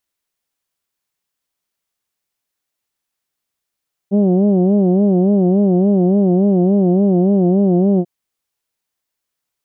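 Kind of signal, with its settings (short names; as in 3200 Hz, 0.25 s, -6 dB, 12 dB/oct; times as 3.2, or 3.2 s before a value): formant vowel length 3.94 s, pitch 193 Hz, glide -0.5 st, vibrato 3.5 Hz, vibrato depth 1.25 st, F1 290 Hz, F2 670 Hz, F3 3000 Hz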